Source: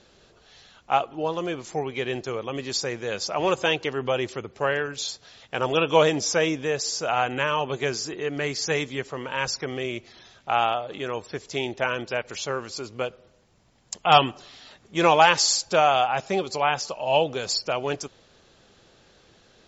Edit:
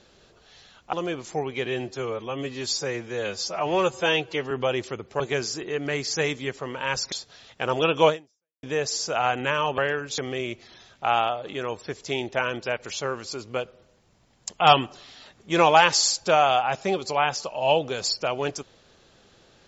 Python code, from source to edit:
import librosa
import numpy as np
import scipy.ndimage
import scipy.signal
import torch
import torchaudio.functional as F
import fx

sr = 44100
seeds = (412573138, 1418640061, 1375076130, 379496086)

y = fx.edit(x, sr, fx.cut(start_s=0.93, length_s=0.4),
    fx.stretch_span(start_s=2.06, length_s=1.9, factor=1.5),
    fx.swap(start_s=4.65, length_s=0.4, other_s=7.71, other_length_s=1.92),
    fx.fade_out_span(start_s=6.01, length_s=0.55, curve='exp'), tone=tone)